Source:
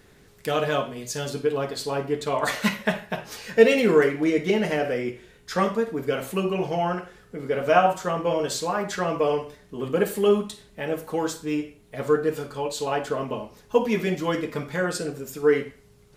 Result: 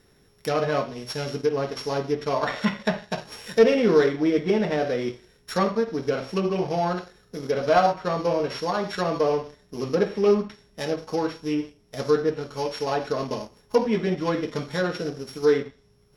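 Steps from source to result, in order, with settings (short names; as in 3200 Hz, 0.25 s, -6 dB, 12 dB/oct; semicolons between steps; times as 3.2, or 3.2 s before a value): sample sorter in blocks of 8 samples; sample leveller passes 1; treble ducked by the level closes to 2500 Hz, closed at -17 dBFS; gain -3 dB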